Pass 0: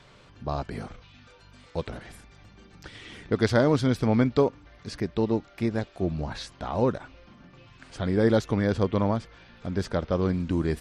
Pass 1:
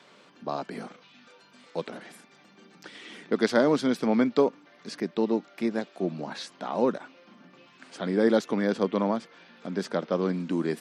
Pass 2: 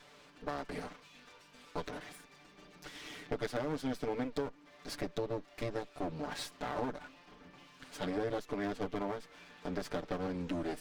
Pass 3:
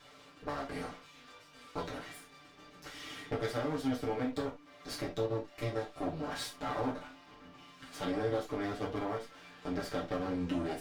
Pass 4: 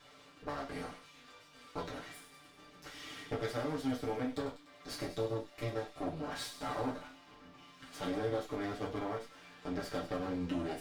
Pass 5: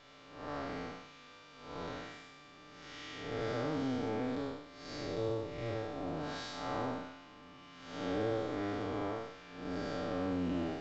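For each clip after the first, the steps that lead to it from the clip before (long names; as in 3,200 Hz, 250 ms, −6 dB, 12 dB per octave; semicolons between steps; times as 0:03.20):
Butterworth high-pass 180 Hz 36 dB per octave
lower of the sound and its delayed copy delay 6.8 ms; downward compressor 5 to 1, threshold −32 dBFS, peak gain reduction 13.5 dB; level −1.5 dB
reverb whose tail is shaped and stops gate 100 ms falling, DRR −2.5 dB; level −2.5 dB
delay with a high-pass on its return 98 ms, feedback 63%, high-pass 3,000 Hz, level −9 dB; level −2 dB
spectrum smeared in time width 212 ms; high-frequency loss of the air 50 metres; level +3.5 dB; mu-law 128 kbit/s 16,000 Hz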